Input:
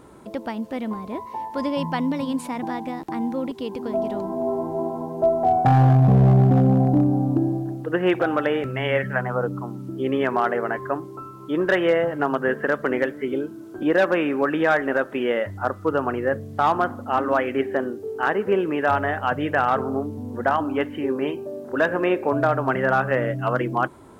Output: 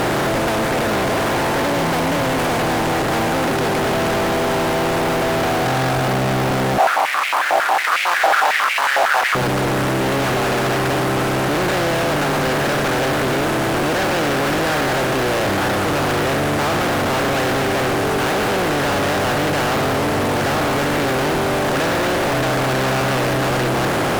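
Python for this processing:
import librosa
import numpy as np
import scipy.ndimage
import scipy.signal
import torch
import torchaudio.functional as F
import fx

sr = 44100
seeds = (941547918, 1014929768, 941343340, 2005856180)

y = fx.bin_compress(x, sr, power=0.2)
y = fx.fuzz(y, sr, gain_db=28.0, gate_db=-28.0)
y = fx.filter_held_highpass(y, sr, hz=11.0, low_hz=720.0, high_hz=2300.0, at=(6.78, 9.35))
y = y * librosa.db_to_amplitude(-4.0)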